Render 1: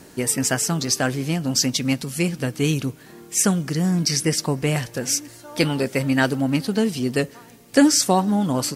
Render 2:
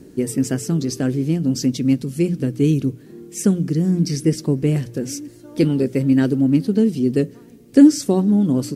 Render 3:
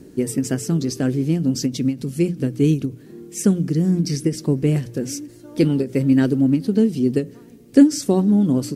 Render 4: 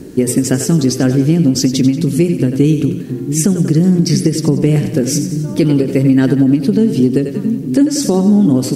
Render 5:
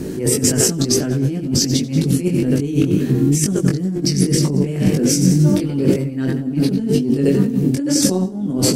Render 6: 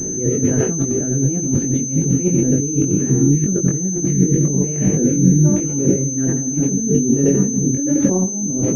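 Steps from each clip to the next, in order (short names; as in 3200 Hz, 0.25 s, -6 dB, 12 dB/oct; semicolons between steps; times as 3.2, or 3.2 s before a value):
resonant low shelf 540 Hz +12.5 dB, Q 1.5; notches 60/120/180 Hz; gain -9 dB
ending taper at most 220 dB/s
split-band echo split 300 Hz, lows 0.677 s, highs 92 ms, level -11 dB; compressor 5:1, threshold -18 dBFS, peak gain reduction 11 dB; maximiser +12 dB; gain -1 dB
negative-ratio compressor -19 dBFS, ratio -1; chorus 2 Hz, delay 20 ms, depth 2.1 ms; gain +4.5 dB
air absorption 480 m; rotary speaker horn 1.2 Hz; pulse-width modulation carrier 6200 Hz; gain +2 dB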